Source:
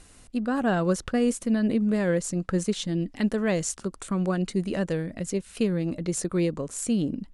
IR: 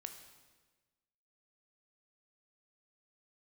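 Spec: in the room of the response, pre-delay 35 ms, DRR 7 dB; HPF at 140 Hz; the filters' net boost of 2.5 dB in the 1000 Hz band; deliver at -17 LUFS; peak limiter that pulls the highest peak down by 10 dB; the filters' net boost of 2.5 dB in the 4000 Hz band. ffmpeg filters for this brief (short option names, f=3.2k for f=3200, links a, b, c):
-filter_complex "[0:a]highpass=140,equalizer=f=1k:t=o:g=3.5,equalizer=f=4k:t=o:g=3,alimiter=limit=-21.5dB:level=0:latency=1,asplit=2[a][b];[1:a]atrim=start_sample=2205,adelay=35[c];[b][c]afir=irnorm=-1:irlink=0,volume=-3dB[d];[a][d]amix=inputs=2:normalize=0,volume=13.5dB"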